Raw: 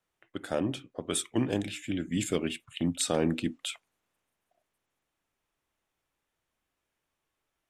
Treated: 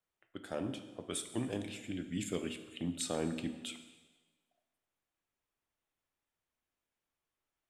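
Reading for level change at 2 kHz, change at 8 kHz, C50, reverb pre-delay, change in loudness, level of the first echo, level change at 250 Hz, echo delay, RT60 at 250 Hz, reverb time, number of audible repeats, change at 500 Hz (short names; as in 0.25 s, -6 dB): -8.0 dB, -8.0 dB, 10.0 dB, 5 ms, -8.0 dB, none, -7.5 dB, none, 1.2 s, 1.3 s, none, -8.0 dB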